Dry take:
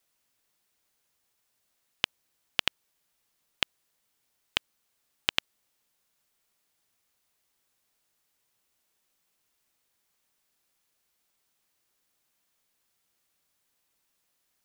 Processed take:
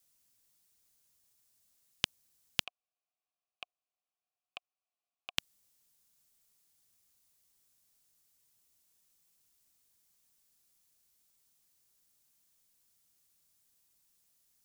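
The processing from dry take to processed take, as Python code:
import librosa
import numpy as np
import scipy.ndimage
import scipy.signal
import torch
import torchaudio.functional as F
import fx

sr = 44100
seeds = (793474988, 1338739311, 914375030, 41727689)

y = fx.vowel_filter(x, sr, vowel='a', at=(2.63, 5.37), fade=0.02)
y = fx.bass_treble(y, sr, bass_db=9, treble_db=11)
y = F.gain(torch.from_numpy(y), -6.5).numpy()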